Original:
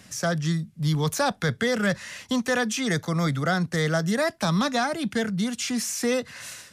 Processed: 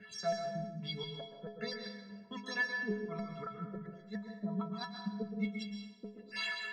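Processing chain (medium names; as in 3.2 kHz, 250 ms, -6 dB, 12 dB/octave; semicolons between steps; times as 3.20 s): random holes in the spectrogram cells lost 28%; high-pass 52 Hz 12 dB/octave; hum notches 50/100/150/200/250 Hz; reverse; compression 16:1, threshold -34 dBFS, peak gain reduction 15 dB; reverse; LFO low-pass sine 1.3 Hz 360–4600 Hz; inverted gate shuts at -27 dBFS, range -30 dB; inharmonic resonator 200 Hz, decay 0.43 s, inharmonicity 0.03; on a send: reverberation RT60 1.0 s, pre-delay 113 ms, DRR 4.5 dB; on the sum: trim +15 dB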